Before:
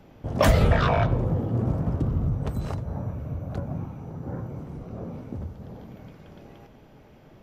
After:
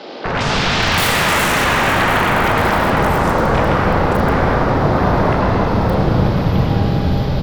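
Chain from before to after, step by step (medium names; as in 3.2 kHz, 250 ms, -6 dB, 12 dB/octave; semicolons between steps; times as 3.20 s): bass shelf 370 Hz +8.5 dB; de-hum 49.27 Hz, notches 30; in parallel at -2 dB: compression 8:1, threshold -28 dBFS, peak gain reduction 20.5 dB; on the sum: integer overflow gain 13.5 dB; band noise 3–5.2 kHz -60 dBFS; sine folder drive 18 dB, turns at -13 dBFS; doubling 36 ms -10.5 dB; three bands offset in time mids, lows, highs 250/570 ms, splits 350/5900 Hz; reverberation RT60 4.6 s, pre-delay 73 ms, DRR -4 dB; trim -3.5 dB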